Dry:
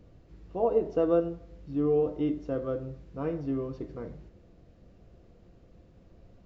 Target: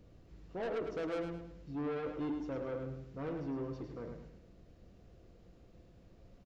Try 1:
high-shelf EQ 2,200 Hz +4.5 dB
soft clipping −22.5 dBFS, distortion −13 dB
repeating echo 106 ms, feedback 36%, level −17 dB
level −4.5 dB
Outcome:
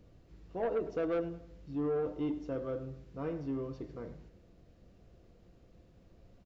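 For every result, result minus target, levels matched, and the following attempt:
echo-to-direct −10.5 dB; soft clipping: distortion −7 dB
high-shelf EQ 2,200 Hz +4.5 dB
soft clipping −22.5 dBFS, distortion −13 dB
repeating echo 106 ms, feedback 36%, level −6.5 dB
level −4.5 dB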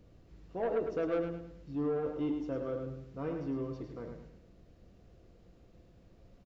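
soft clipping: distortion −7 dB
high-shelf EQ 2,200 Hz +4.5 dB
soft clipping −30.5 dBFS, distortion −6 dB
repeating echo 106 ms, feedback 36%, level −6.5 dB
level −4.5 dB

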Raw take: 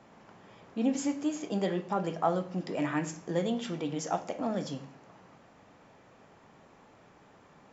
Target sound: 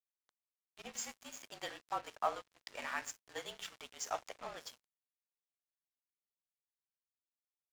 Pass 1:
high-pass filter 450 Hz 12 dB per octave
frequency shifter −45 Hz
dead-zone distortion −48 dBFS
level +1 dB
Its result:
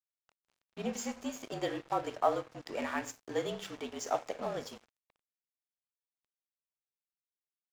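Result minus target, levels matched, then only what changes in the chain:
500 Hz band +4.5 dB
change: high-pass filter 1,100 Hz 12 dB per octave

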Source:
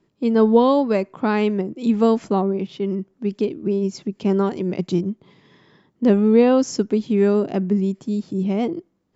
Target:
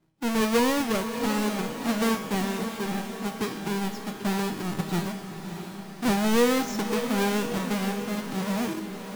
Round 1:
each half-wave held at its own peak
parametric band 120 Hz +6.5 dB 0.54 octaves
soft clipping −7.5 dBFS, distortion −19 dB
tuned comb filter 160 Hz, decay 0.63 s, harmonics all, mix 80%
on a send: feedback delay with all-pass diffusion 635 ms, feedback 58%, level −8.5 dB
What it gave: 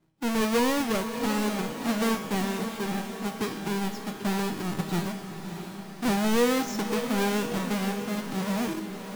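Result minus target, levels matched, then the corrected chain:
soft clipping: distortion +11 dB
each half-wave held at its own peak
parametric band 120 Hz +6.5 dB 0.54 octaves
soft clipping −1 dBFS, distortion −30 dB
tuned comb filter 160 Hz, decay 0.63 s, harmonics all, mix 80%
on a send: feedback delay with all-pass diffusion 635 ms, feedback 58%, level −8.5 dB

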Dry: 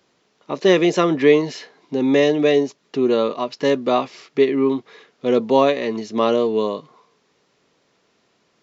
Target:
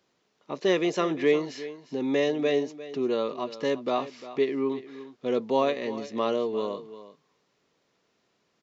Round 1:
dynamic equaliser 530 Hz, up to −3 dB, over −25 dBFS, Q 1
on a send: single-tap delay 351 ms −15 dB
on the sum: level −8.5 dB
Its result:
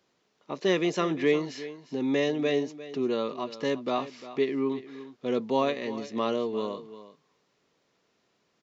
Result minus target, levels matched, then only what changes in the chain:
125 Hz band +3.5 dB
change: dynamic equaliser 170 Hz, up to −3 dB, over −25 dBFS, Q 1

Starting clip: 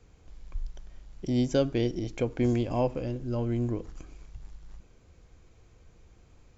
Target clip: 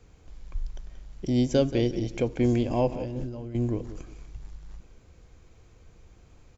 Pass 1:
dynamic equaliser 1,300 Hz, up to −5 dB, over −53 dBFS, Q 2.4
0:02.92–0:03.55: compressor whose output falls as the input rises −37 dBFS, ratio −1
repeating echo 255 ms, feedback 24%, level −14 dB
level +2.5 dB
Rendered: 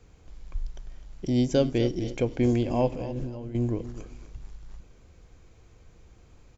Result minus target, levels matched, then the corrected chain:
echo 75 ms late
dynamic equaliser 1,300 Hz, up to −5 dB, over −53 dBFS, Q 2.4
0:02.92–0:03.55: compressor whose output falls as the input rises −37 dBFS, ratio −1
repeating echo 180 ms, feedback 24%, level −14 dB
level +2.5 dB

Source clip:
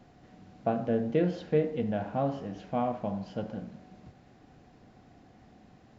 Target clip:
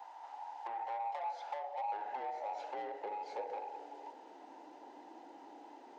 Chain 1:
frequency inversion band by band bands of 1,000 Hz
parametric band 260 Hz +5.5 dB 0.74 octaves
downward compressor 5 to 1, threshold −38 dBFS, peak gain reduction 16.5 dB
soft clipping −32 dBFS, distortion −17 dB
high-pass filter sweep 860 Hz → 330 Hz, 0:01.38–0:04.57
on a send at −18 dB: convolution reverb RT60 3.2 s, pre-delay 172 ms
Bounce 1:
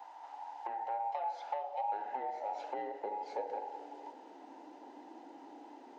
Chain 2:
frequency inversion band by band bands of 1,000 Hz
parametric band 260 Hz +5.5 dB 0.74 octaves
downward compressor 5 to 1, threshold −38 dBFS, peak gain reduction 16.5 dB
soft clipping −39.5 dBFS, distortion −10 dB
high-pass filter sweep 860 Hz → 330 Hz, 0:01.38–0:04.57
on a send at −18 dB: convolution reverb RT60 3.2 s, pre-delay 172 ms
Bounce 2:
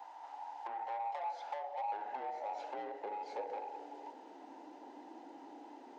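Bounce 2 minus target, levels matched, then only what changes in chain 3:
250 Hz band +5.0 dB
remove: parametric band 260 Hz +5.5 dB 0.74 octaves

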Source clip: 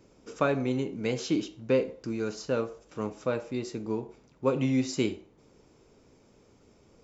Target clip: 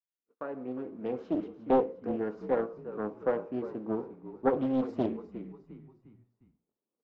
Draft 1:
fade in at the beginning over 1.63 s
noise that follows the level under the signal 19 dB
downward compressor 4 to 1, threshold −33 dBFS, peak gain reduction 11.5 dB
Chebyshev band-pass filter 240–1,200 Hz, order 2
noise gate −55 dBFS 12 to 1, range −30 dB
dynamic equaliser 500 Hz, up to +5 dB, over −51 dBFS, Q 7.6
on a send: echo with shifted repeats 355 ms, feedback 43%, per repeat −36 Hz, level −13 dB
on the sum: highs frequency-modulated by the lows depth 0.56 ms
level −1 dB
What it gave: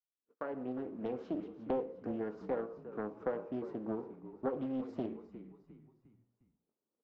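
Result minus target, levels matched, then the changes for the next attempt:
downward compressor: peak gain reduction +11.5 dB
remove: downward compressor 4 to 1, threshold −33 dBFS, peak gain reduction 11.5 dB

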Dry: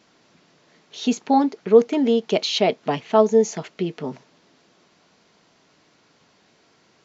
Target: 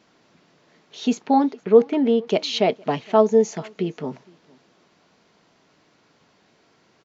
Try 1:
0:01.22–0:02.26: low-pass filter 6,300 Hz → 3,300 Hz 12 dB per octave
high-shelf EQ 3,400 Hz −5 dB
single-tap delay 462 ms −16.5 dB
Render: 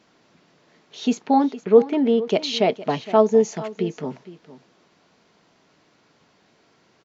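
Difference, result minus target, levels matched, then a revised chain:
echo-to-direct +10.5 dB
0:01.22–0:02.26: low-pass filter 6,300 Hz → 3,300 Hz 12 dB per octave
high-shelf EQ 3,400 Hz −5 dB
single-tap delay 462 ms −27 dB

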